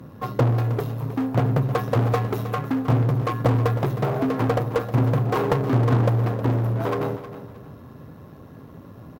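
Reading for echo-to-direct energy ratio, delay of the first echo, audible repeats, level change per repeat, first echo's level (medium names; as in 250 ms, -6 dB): -12.5 dB, 314 ms, 2, -11.0 dB, -13.0 dB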